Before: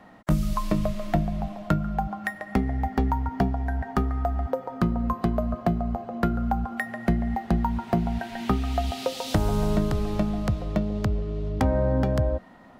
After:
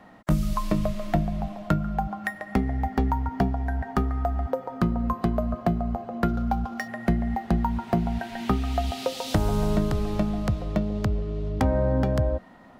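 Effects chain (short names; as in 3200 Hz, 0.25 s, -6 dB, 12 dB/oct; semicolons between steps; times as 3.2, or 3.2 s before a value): 6.28–6.88 median filter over 15 samples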